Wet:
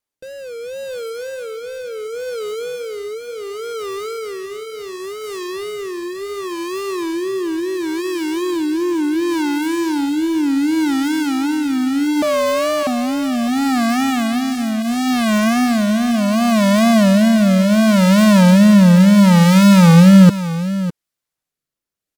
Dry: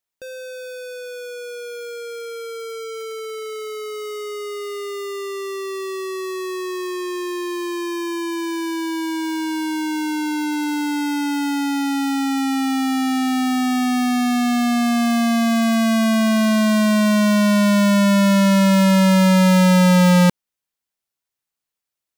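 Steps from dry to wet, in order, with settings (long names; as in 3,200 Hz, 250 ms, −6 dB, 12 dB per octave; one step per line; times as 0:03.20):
comb filter 6.3 ms, depth 32%
tape wow and flutter 150 cents
0:12.22–0:12.87: frequency shifter +320 Hz
in parallel at −11 dB: sample-rate reduction 3,600 Hz, jitter 0%
on the sum: rotating-speaker cabinet horn 0.7 Hz
on a send: single-tap delay 605 ms −13 dB
on the sum: level +3 dB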